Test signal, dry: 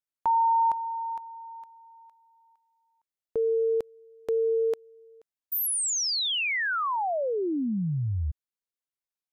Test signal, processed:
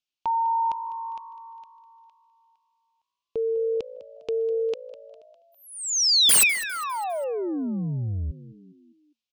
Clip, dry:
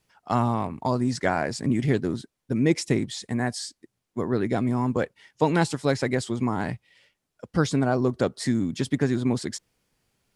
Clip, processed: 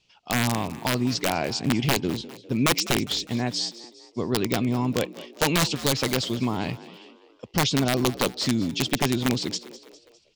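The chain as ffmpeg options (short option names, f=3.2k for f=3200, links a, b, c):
-filter_complex "[0:a]lowpass=f=6.1k:w=0.5412,lowpass=f=6.1k:w=1.3066,highshelf=f=2.2k:t=q:w=3:g=7,aeval=exprs='(mod(4.73*val(0)+1,2)-1)/4.73':c=same,asplit=2[a][b];[b]asplit=4[c][d][e][f];[c]adelay=202,afreqshift=56,volume=-17dB[g];[d]adelay=404,afreqshift=112,volume=-23dB[h];[e]adelay=606,afreqshift=168,volume=-29dB[i];[f]adelay=808,afreqshift=224,volume=-35.1dB[j];[g][h][i][j]amix=inputs=4:normalize=0[k];[a][k]amix=inputs=2:normalize=0"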